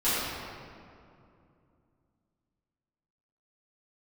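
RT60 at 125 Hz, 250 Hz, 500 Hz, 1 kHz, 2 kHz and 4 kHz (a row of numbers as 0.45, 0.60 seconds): 3.5, 3.4, 2.7, 2.4, 1.9, 1.4 seconds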